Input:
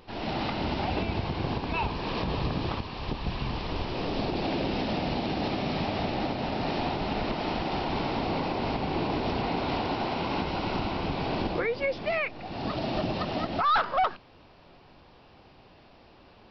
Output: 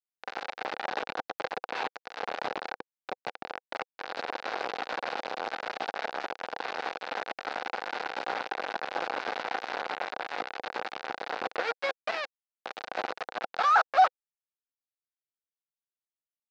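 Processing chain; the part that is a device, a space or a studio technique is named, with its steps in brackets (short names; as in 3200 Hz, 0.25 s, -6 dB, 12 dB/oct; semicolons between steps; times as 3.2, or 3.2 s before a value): hand-held game console (bit-crush 4-bit; speaker cabinet 430–4200 Hz, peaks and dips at 500 Hz +6 dB, 780 Hz +8 dB, 1500 Hz +6 dB, 3200 Hz -5 dB); gain -4.5 dB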